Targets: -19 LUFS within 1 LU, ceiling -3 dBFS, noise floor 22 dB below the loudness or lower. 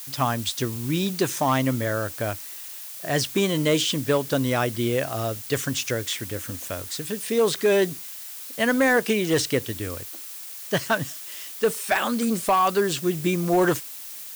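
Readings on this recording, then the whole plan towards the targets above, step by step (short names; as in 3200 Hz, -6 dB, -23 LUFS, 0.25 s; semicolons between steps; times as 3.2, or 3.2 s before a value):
clipped 0.3%; flat tops at -13.5 dBFS; noise floor -38 dBFS; noise floor target -47 dBFS; loudness -24.5 LUFS; peak -13.5 dBFS; loudness target -19.0 LUFS
-> clip repair -13.5 dBFS; noise print and reduce 9 dB; gain +5.5 dB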